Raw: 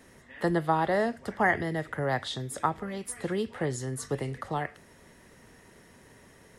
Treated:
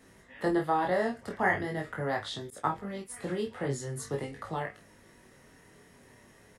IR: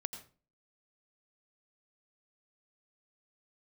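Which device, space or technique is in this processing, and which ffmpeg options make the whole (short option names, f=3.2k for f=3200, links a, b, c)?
double-tracked vocal: -filter_complex "[0:a]asplit=2[a][b];[b]adelay=29,volume=-7dB[c];[a][c]amix=inputs=2:normalize=0,flanger=delay=18.5:depth=3.7:speed=0.44,asettb=1/sr,asplit=3[d][e][f];[d]atrim=end=2.504[g];[e]atrim=start=2.5:end=3.14,asetpts=PTS-STARTPTS,afade=t=in:d=0.004:c=qsin,afade=t=out:st=0.636:d=0.004:c=qsin,agate=range=-33dB:threshold=-35dB:ratio=3:detection=peak[h];[f]atrim=start=3.136[i];[g][h]acrossfade=d=0.004:c1=hsin:c2=qsin[j];[j][i]acrossfade=d=0.004:c1=qsin:c2=hsin"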